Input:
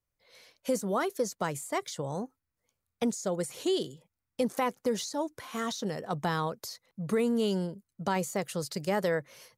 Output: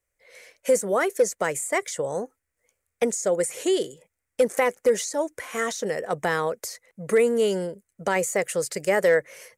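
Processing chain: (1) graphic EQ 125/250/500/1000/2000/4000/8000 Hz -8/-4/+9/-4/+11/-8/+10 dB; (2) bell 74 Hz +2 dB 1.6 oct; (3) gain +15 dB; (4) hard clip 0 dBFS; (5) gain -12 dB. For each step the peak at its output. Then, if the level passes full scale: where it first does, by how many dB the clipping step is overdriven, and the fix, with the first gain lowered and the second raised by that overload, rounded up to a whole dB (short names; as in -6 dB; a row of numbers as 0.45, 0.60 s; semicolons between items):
-11.5, -11.5, +3.5, 0.0, -12.0 dBFS; step 3, 3.5 dB; step 3 +11 dB, step 5 -8 dB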